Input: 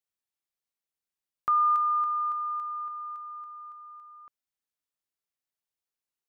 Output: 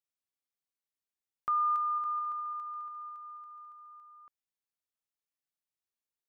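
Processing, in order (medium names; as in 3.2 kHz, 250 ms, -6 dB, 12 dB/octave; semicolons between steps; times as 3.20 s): 1.84–3.93 s: multi-head delay 70 ms, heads second and third, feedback 59%, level -9 dB; trim -5.5 dB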